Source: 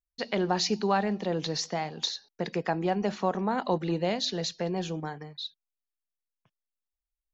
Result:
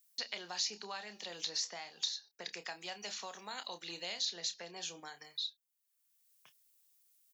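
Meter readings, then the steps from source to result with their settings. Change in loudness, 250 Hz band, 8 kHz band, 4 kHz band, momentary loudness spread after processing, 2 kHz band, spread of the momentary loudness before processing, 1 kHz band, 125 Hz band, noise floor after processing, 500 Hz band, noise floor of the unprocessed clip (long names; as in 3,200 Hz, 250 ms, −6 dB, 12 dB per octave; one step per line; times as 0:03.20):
−10.0 dB, −26.0 dB, can't be measured, −3.5 dB, 8 LU, −8.0 dB, 9 LU, −17.0 dB, −29.0 dB, −81 dBFS, −20.5 dB, below −85 dBFS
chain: first difference
double-tracking delay 29 ms −10.5 dB
multiband upward and downward compressor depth 70%
level +1.5 dB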